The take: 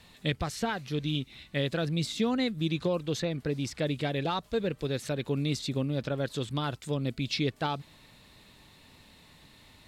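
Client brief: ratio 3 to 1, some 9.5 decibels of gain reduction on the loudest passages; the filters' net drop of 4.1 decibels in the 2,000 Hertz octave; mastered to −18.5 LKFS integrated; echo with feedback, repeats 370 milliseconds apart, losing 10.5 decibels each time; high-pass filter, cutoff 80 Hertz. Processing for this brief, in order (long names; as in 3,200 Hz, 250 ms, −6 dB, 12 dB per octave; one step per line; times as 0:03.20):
high-pass filter 80 Hz
parametric band 2,000 Hz −5.5 dB
downward compressor 3 to 1, threshold −38 dBFS
repeating echo 370 ms, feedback 30%, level −10.5 dB
level +21.5 dB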